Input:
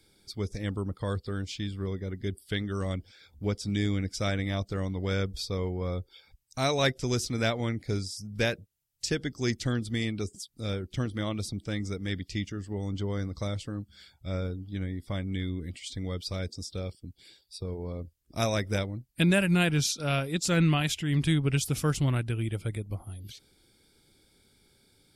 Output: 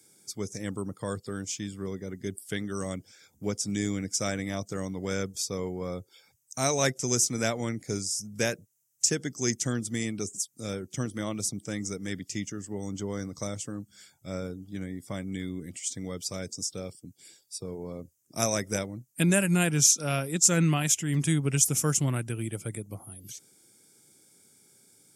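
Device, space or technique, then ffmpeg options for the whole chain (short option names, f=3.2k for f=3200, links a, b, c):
budget condenser microphone: -af "highpass=f=120:w=0.5412,highpass=f=120:w=1.3066,highshelf=f=5.2k:t=q:w=3:g=8"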